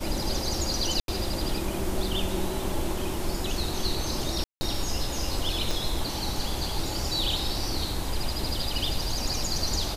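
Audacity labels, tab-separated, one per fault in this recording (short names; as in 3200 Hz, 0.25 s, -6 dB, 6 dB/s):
1.000000	1.080000	gap 82 ms
4.440000	4.610000	gap 0.17 s
5.710000	5.710000	pop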